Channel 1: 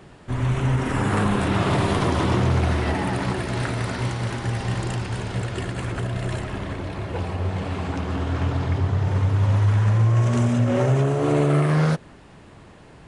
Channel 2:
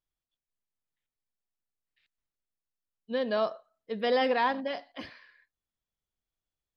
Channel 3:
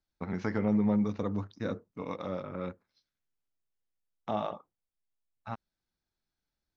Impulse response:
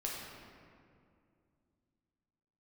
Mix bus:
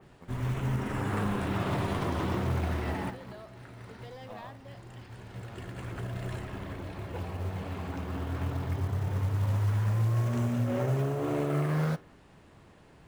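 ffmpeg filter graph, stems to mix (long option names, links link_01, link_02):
-filter_complex "[0:a]flanger=delay=7.9:depth=4.5:regen=-80:speed=0.2:shape=triangular,adynamicequalizer=threshold=0.00562:dfrequency=3100:dqfactor=0.7:tfrequency=3100:tqfactor=0.7:attack=5:release=100:ratio=0.375:range=2:mode=cutabove:tftype=highshelf,volume=-5dB[link_01];[1:a]acompressor=threshold=-49dB:ratio=1.5,aeval=exprs='clip(val(0),-1,0.0168)':channel_layout=same,volume=-11dB,asplit=2[link_02][link_03];[2:a]volume=-15dB[link_04];[link_03]apad=whole_len=576521[link_05];[link_01][link_05]sidechaincompress=threshold=-56dB:ratio=10:attack=5.1:release=1410[link_06];[link_06][link_02][link_04]amix=inputs=3:normalize=0,acrusher=bits=7:mode=log:mix=0:aa=0.000001"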